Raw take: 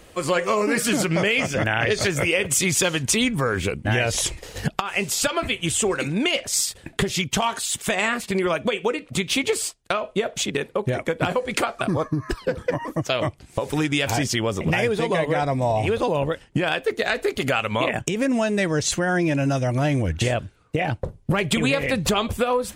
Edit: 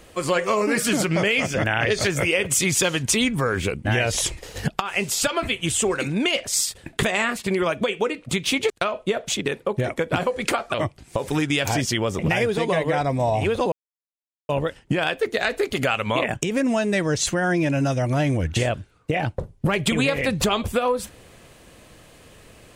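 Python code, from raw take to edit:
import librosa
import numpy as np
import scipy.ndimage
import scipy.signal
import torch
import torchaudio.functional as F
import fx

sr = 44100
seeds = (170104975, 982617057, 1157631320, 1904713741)

y = fx.edit(x, sr, fx.cut(start_s=7.03, length_s=0.84),
    fx.cut(start_s=9.54, length_s=0.25),
    fx.cut(start_s=11.83, length_s=1.33),
    fx.insert_silence(at_s=16.14, length_s=0.77), tone=tone)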